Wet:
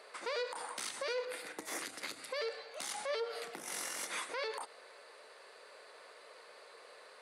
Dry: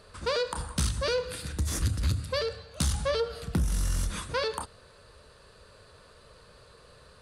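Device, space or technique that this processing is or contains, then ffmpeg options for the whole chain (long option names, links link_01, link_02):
laptop speaker: -filter_complex "[0:a]asettb=1/sr,asplit=3[link_01][link_02][link_03];[link_01]atrim=end=1.254[link_04];[link_02]atrim=start=1.25:end=1.79,asetpts=PTS-STARTPTS,afade=type=in:duration=0.004:curve=qsin,afade=type=out:start_time=0.536:duration=0.004:curve=qsin,equalizer=frequency=5900:width_type=o:width=2.9:gain=-7.5[link_05];[link_03]atrim=start=1.786[link_06];[link_04][link_05]acrossfade=duration=0.004:curve1=hsin:curve2=qsin[link_07];[link_07][link_06]acrossfade=duration=0.004:curve1=qsin:curve2=hsin,highpass=frequency=350:width=0.5412,highpass=frequency=350:width=1.3066,equalizer=frequency=770:width_type=o:width=0.56:gain=7,equalizer=frequency=2100:width_type=o:width=0.38:gain=11,alimiter=level_in=3dB:limit=-24dB:level=0:latency=1:release=123,volume=-3dB,volume=-2dB"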